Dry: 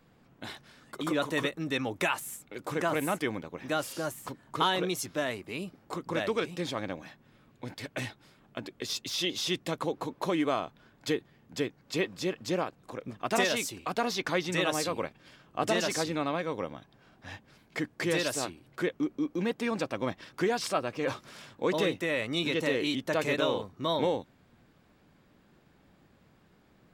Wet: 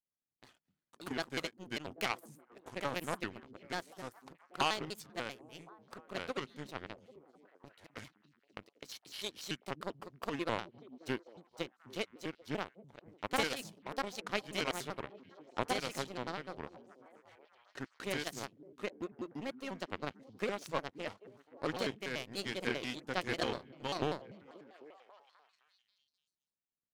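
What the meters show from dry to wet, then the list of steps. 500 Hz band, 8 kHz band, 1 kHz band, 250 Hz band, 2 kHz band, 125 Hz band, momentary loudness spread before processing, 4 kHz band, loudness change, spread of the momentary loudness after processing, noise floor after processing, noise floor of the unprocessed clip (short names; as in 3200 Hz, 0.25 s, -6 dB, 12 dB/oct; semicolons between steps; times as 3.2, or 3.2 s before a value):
-10.0 dB, -10.5 dB, -7.0 dB, -10.5 dB, -7.0 dB, -9.0 dB, 14 LU, -7.5 dB, -8.5 dB, 18 LU, under -85 dBFS, -63 dBFS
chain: power-law curve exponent 2; delay with a stepping band-pass 0.264 s, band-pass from 180 Hz, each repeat 0.7 oct, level -11.5 dB; shaped vibrato square 5.1 Hz, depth 250 cents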